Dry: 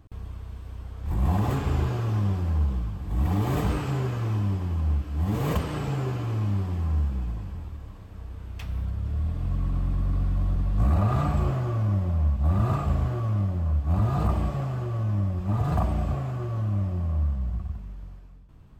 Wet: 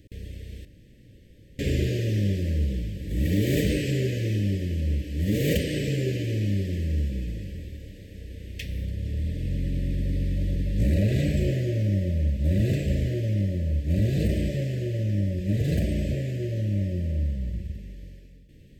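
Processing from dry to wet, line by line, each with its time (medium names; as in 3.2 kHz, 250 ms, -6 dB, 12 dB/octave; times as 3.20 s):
0.65–1.59 s: room tone
whole clip: Chebyshev band-stop 570–1800 Hz, order 4; bass shelf 180 Hz -10 dB; trim +8 dB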